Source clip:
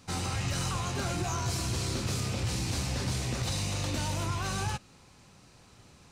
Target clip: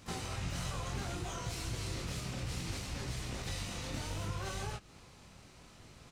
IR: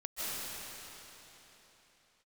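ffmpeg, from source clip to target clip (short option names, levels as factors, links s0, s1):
-filter_complex "[0:a]acompressor=threshold=0.0126:ratio=4,flanger=delay=17.5:depth=7.4:speed=0.65,asplit=3[s0][s1][s2];[s1]asetrate=22050,aresample=44100,atempo=2,volume=0.708[s3];[s2]asetrate=58866,aresample=44100,atempo=0.749154,volume=0.282[s4];[s0][s3][s4]amix=inputs=3:normalize=0,volume=1.19"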